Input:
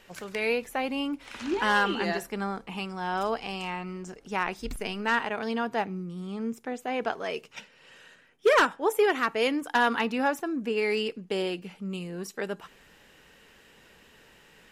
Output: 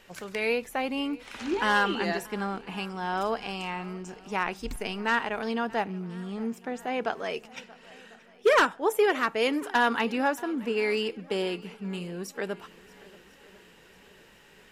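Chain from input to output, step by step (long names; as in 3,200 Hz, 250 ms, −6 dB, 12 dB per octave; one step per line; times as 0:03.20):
feedback echo with a long and a short gap by turns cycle 1,048 ms, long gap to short 1.5 to 1, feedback 42%, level −22 dB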